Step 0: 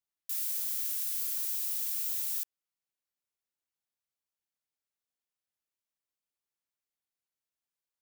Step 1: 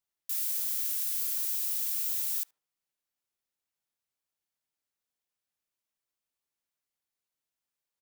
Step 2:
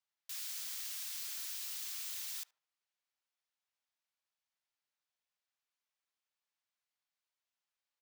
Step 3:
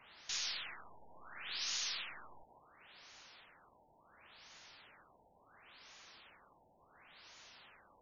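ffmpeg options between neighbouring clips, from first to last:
-filter_complex "[0:a]asplit=2[a][b];[b]adelay=74,lowpass=f=850:p=1,volume=-13.5dB,asplit=2[c][d];[d]adelay=74,lowpass=f=850:p=1,volume=0.44,asplit=2[e][f];[f]adelay=74,lowpass=f=850:p=1,volume=0.44,asplit=2[g][h];[h]adelay=74,lowpass=f=850:p=1,volume=0.44[i];[a][c][e][g][i]amix=inputs=5:normalize=0,volume=2dB"
-filter_complex "[0:a]acrossover=split=570 6400:gain=0.126 1 0.224[a][b][c];[a][b][c]amix=inputs=3:normalize=0"
-af "aeval=exprs='val(0)+0.5*0.0015*sgn(val(0))':c=same,aeval=exprs='0.0335*(cos(1*acos(clip(val(0)/0.0335,-1,1)))-cos(1*PI/2))+0.00422*(cos(2*acos(clip(val(0)/0.0335,-1,1)))-cos(2*PI/2))':c=same,afftfilt=real='re*lt(b*sr/1024,940*pow(7100/940,0.5+0.5*sin(2*PI*0.71*pts/sr)))':imag='im*lt(b*sr/1024,940*pow(7100/940,0.5+0.5*sin(2*PI*0.71*pts/sr)))':win_size=1024:overlap=0.75,volume=9dB"

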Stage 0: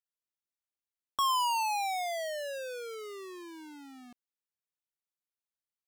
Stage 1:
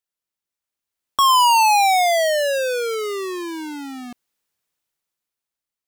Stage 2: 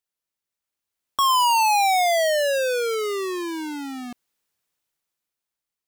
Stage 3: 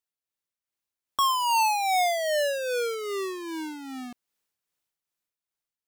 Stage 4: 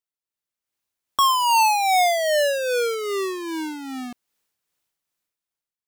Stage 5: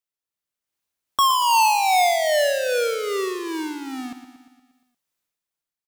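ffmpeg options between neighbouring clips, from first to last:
-af "dynaudnorm=f=280:g=9:m=12dB,volume=5.5dB"
-af "asoftclip=type=tanh:threshold=-17dB"
-af "tremolo=f=2.5:d=0.48,volume=-3dB"
-af "dynaudnorm=f=120:g=9:m=9dB,volume=-3.5dB"
-af "aecho=1:1:117|234|351|468|585|702|819:0.282|0.163|0.0948|0.055|0.0319|0.0185|0.0107"

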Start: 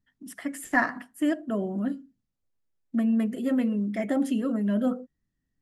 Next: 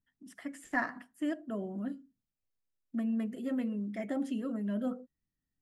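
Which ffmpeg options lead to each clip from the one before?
-filter_complex "[0:a]acrossover=split=8600[a][b];[b]acompressor=threshold=-59dB:ratio=4:attack=1:release=60[c];[a][c]amix=inputs=2:normalize=0,volume=-8.5dB"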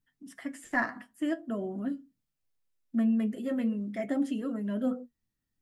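-af "flanger=delay=6.6:depth=2.8:regen=60:speed=0.45:shape=sinusoidal,volume=7.5dB"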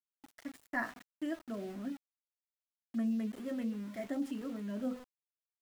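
-af "aeval=exprs='val(0)*gte(abs(val(0)),0.00794)':c=same,volume=-7dB"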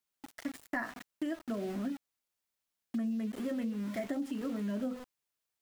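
-af "acompressor=threshold=-41dB:ratio=6,volume=8.5dB"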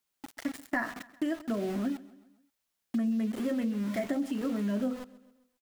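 -af "aecho=1:1:133|266|399|532:0.106|0.053|0.0265|0.0132,volume=4.5dB"

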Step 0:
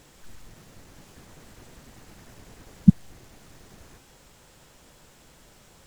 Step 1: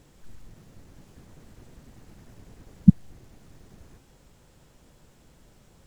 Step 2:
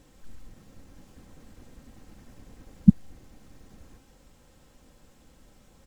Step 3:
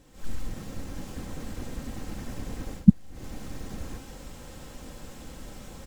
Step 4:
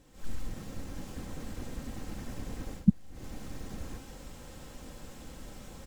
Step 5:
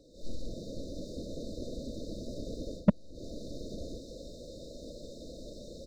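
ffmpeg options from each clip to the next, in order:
-af "lowshelf=f=480:g=9.5,volume=-8dB"
-af "aecho=1:1:3.8:0.38,volume=-1dB"
-af "dynaudnorm=f=130:g=3:m=15dB,volume=-1dB"
-af "alimiter=level_in=5.5dB:limit=-1dB:release=50:level=0:latency=1,volume=-9dB"
-filter_complex "[0:a]afftfilt=real='re*(1-between(b*sr/4096,680,3600))':imag='im*(1-between(b*sr/4096,680,3600))':win_size=4096:overlap=0.75,volume=13dB,asoftclip=hard,volume=-13dB,acrossover=split=330 5000:gain=0.251 1 0.0708[a][b][c];[a][b][c]amix=inputs=3:normalize=0,volume=9dB"

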